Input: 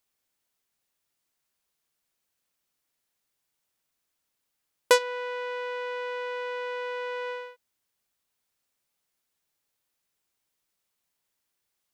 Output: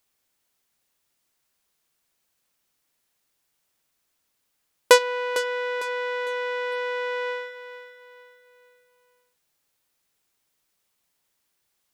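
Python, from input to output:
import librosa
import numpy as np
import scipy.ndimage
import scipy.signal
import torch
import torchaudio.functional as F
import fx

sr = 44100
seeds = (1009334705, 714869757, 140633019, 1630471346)

y = fx.echo_feedback(x, sr, ms=453, feedback_pct=38, wet_db=-12)
y = y * 10.0 ** (5.5 / 20.0)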